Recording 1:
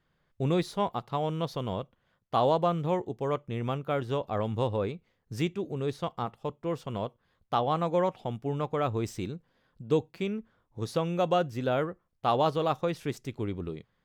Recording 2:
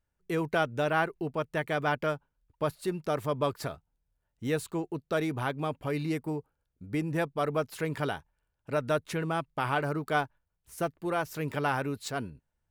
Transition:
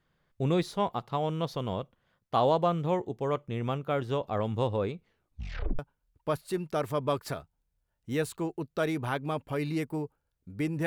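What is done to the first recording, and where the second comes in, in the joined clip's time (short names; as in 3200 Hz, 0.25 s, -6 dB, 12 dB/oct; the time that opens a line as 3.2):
recording 1
5.05 tape stop 0.74 s
5.79 switch to recording 2 from 2.13 s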